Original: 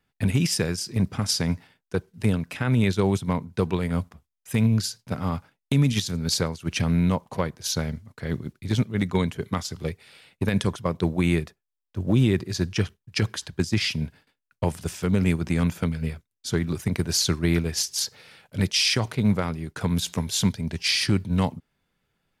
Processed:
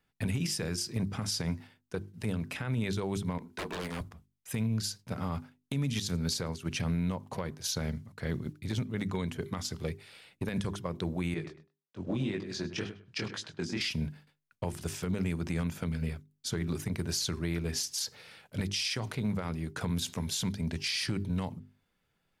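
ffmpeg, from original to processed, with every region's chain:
-filter_complex "[0:a]asettb=1/sr,asplit=3[s0][s1][s2];[s0]atrim=end=3.384[s3];[s1]atrim=start=3.38:end=4.01,asetpts=PTS-STARTPTS,afade=t=in:d=0.004:c=qsin,afade=t=out:st=0.626:d=0.004:c=qsin,highpass=270,asplit=2[s4][s5];[s5]adelay=33,volume=0.224[s6];[s4][s6]amix=inputs=2:normalize=0,atrim=end_sample=27783,aeval=exprs='0.0398*(abs(mod(val(0)/0.0398+3,4)-2)-1)':c=same[s7];[s2]atrim=start=4.006[s8];[s3][s7]acrossfade=d=0.004:c1=hsin:c2=qsin[s9];[s9][s8]acrossfade=d=0.004:c1=qsin:c2=hsin,asettb=1/sr,asplit=3[s10][s11][s12];[s10]atrim=end=11.344[s13];[s11]atrim=start=11.34:end=13.81,asetpts=PTS-STARTPTS,afade=t=in:d=0.004:c=qsin,afade=t=out:st=2.466:d=0.004:c=qsin,asplit=2[s14][s15];[s15]adelay=102,lowpass=f=3800:p=1,volume=0.2,asplit=2[s16][s17];[s17]adelay=102,lowpass=f=3800:p=1,volume=0.22[s18];[s14][s16][s18]amix=inputs=3:normalize=0,atrim=end_sample=108927,flanger=delay=18.5:depth=6.8:speed=1.9,highpass=170,lowpass=6200[s19];[s12]atrim=start=13.806[s20];[s13][s19]acrossfade=d=0.004:c1=hsin:c2=qsin[s21];[s21][s20]acrossfade=d=0.004:c1=qsin:c2=hsin,bandreject=f=50:t=h:w=6,bandreject=f=100:t=h:w=6,bandreject=f=150:t=h:w=6,bandreject=f=200:t=h:w=6,bandreject=f=250:t=h:w=6,bandreject=f=300:t=h:w=6,bandreject=f=350:t=h:w=6,bandreject=f=400:t=h:w=6,acompressor=threshold=0.0708:ratio=6,alimiter=limit=0.0944:level=0:latency=1:release=54,volume=0.75"

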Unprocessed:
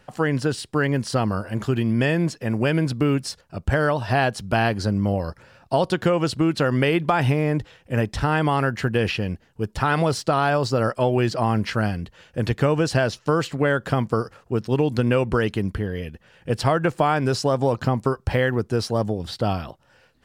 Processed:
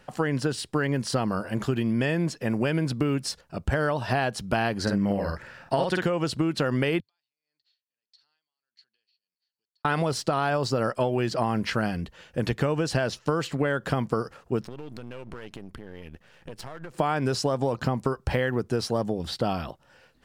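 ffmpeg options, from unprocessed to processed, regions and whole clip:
-filter_complex "[0:a]asettb=1/sr,asplit=3[s0][s1][s2];[s0]atrim=end=4.824[s3];[s1]atrim=start=4.82:end=6.02,asetpts=PTS-STARTPTS,afade=t=in:d=0.004:c=qsin,afade=t=out:st=1.196:d=0.004:c=qsin,equalizer=f=1800:w=2.3:g=8.5,asplit=2[s4][s5];[s5]adelay=50,volume=0.75[s6];[s4][s6]amix=inputs=2:normalize=0,atrim=end_sample=52920[s7];[s2]atrim=start=6.016[s8];[s3][s7]acrossfade=d=0.004:c1=hsin:c2=qsin[s9];[s9][s8]acrossfade=d=0.004:c1=qsin:c2=hsin,asettb=1/sr,asplit=3[s10][s11][s12];[s10]atrim=end=7.004[s13];[s11]atrim=start=7:end=9.85,asetpts=PTS-STARTPTS,afade=t=in:d=0.004:c=qsin,afade=t=out:st=2.846:d=0.004:c=qsin,acompressor=threshold=0.02:ratio=8:attack=3.2:release=140:knee=1:detection=peak,bandpass=f=4400:t=q:w=18,aeval=exprs='val(0)*pow(10,-19*(0.5-0.5*cos(2*PI*1.6*n/s))/20)':c=same[s14];[s12]atrim=start=9.846[s15];[s13][s14]acrossfade=d=0.004:c1=hsin:c2=qsin[s16];[s16][s15]acrossfade=d=0.004:c1=qsin:c2=hsin,asettb=1/sr,asplit=3[s17][s18][s19];[s17]atrim=end=14.634[s20];[s18]atrim=start=14.63:end=16.94,asetpts=PTS-STARTPTS,afade=t=in:d=0.004:c=qsin,afade=t=out:st=2.306:d=0.004:c=qsin,aeval=exprs='if(lt(val(0),0),0.251*val(0),val(0))':c=same,acompressor=threshold=0.02:ratio=12:attack=3.2:release=140:knee=1:detection=peak[s21];[s19]atrim=start=16.936[s22];[s20][s21]acrossfade=d=0.004:c1=hsin:c2=qsin[s23];[s23][s22]acrossfade=d=0.004:c1=qsin:c2=hsin,equalizer=f=100:t=o:w=0.26:g=-11.5,acompressor=threshold=0.0891:ratio=6"

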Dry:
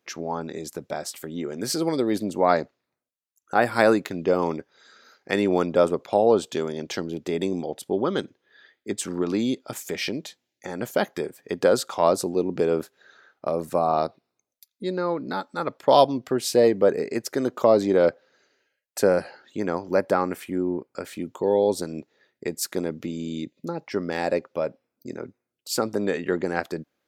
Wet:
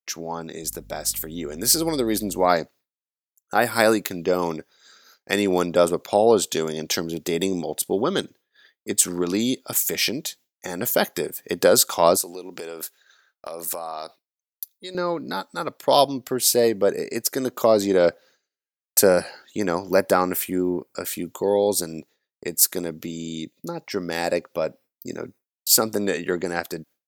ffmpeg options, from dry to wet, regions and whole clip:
-filter_complex "[0:a]asettb=1/sr,asplit=3[s0][s1][s2];[s0]atrim=end=0.634[s3];[s1]atrim=start=0.63:end=2.46,asetpts=PTS-STARTPTS,afade=t=in:d=0.004:c=qsin,afade=t=out:st=1.826:d=0.004:c=qsin,deesser=0.3,aeval=exprs='val(0)+0.00631*(sin(2*PI*50*n/s)+sin(2*PI*2*50*n/s)/2+sin(2*PI*3*50*n/s)/3+sin(2*PI*4*50*n/s)/4+sin(2*PI*5*50*n/s)/5)':c=same[s4];[s2]atrim=start=2.456[s5];[s3][s4]acrossfade=d=0.004:c1=hsin:c2=qsin[s6];[s6][s5]acrossfade=d=0.004:c1=qsin:c2=hsin,asettb=1/sr,asplit=3[s7][s8][s9];[s7]atrim=end=12.174[s10];[s8]atrim=start=12.17:end=14.95,asetpts=PTS-STARTPTS,afade=t=in:d=0.004:c=qsin,afade=t=out:st=2.776:d=0.004:c=qsin,highpass=f=970:p=1,acompressor=threshold=0.02:ratio=4:attack=3.2:release=140:knee=1:detection=peak[s11];[s9]atrim=start=14.946[s12];[s10][s11]acrossfade=d=0.004:c1=hsin:c2=qsin[s13];[s13][s12]acrossfade=d=0.004:c1=qsin:c2=hsin,aemphasis=mode=production:type=75fm,agate=range=0.0224:threshold=0.00562:ratio=3:detection=peak,dynaudnorm=f=370:g=9:m=3.76,volume=0.891"

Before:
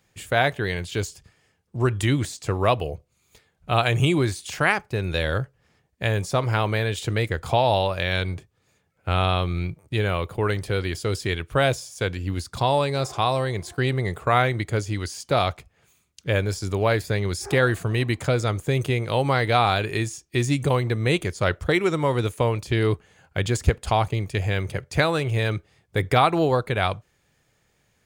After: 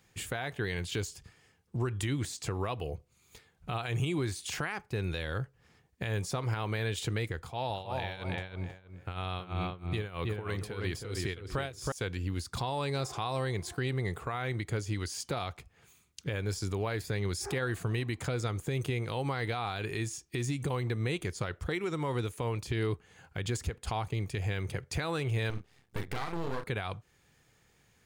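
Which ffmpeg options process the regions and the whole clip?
-filter_complex "[0:a]asettb=1/sr,asplit=3[s0][s1][s2];[s0]atrim=end=7.374[s3];[s1]atrim=start=7.37:end=11.92,asetpts=PTS-STARTPTS,afade=t=in:d=0.004:c=qsin,afade=t=out:st=4.546:d=0.004:c=qsin,asplit=2[s4][s5];[s5]adelay=320,lowpass=f=2000:p=1,volume=0.631,asplit=2[s6][s7];[s7]adelay=320,lowpass=f=2000:p=1,volume=0.23,asplit=2[s8][s9];[s9]adelay=320,lowpass=f=2000:p=1,volume=0.23[s10];[s4][s6][s8][s10]amix=inputs=4:normalize=0,atrim=end_sample=200655,tremolo=f=3.1:d=0.88[s11];[s2]atrim=start=11.916[s12];[s3][s11]acrossfade=d=0.004:c1=hsin:c2=qsin[s13];[s13][s12]acrossfade=d=0.004:c1=qsin:c2=hsin,asettb=1/sr,asplit=3[s14][s15][s16];[s14]atrim=end=25.504[s17];[s15]atrim=start=25.5:end=26.64,asetpts=PTS-STARTPTS,afade=t=in:d=0.004:c=qsin,afade=t=out:st=1.136:d=0.004:c=qsin,highpass=f=40:p=1,asplit=2[s18][s19];[s19]adelay=36,volume=0.398[s20];[s18][s20]amix=inputs=2:normalize=0,atrim=end_sample=50274,aeval=exprs='max(val(0),0)':c=same[s21];[s16]atrim=start=26.636[s22];[s17][s21]acrossfade=d=0.004:c1=hsin:c2=qsin[s23];[s23][s22]acrossfade=d=0.004:c1=qsin:c2=hsin,equalizer=f=600:t=o:w=0.24:g=-7,acompressor=threshold=0.02:ratio=2,alimiter=limit=0.0668:level=0:latency=1:release=87"

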